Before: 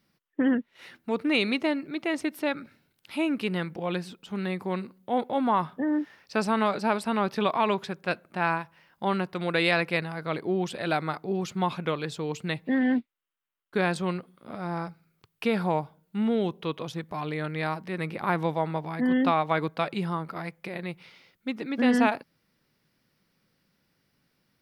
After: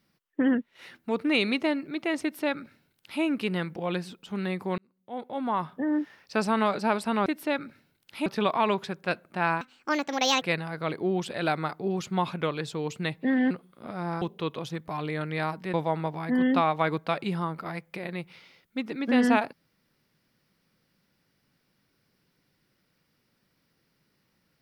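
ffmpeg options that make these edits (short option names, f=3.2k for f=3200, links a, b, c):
-filter_complex "[0:a]asplit=9[a][b][c][d][e][f][g][h][i];[a]atrim=end=4.78,asetpts=PTS-STARTPTS,afade=t=out:st=4.776:d=0.004:c=hsin[j];[b]atrim=start=4.78:end=7.262,asetpts=PTS-STARTPTS,afade=t=in:d=1.18[k];[c]atrim=start=2.218:end=3.222[l];[d]atrim=start=7.258:end=8.614[m];[e]atrim=start=8.61:end=9.86,asetpts=PTS-STARTPTS,asetrate=68355,aresample=44100[n];[f]atrim=start=9.856:end=12.952[o];[g]atrim=start=14.148:end=14.862[p];[h]atrim=start=16.448:end=17.972[q];[i]atrim=start=18.438[r];[j][k]concat=n=2:v=0:a=1[s];[s][l]acrossfade=d=0.004:c1=hsin:c2=hsin[t];[t][m]acrossfade=d=0.004:c1=hsin:c2=hsin[u];[u][n]acrossfade=d=0.004:c1=hsin:c2=hsin[v];[v][o]acrossfade=d=0.004:c1=hsin:c2=hsin[w];[w][p]acrossfade=d=0.004:c1=hsin:c2=hsin[x];[x][q]acrossfade=d=0.004:c1=hsin:c2=hsin[y];[y][r]acrossfade=d=0.004:c1=hsin:c2=hsin"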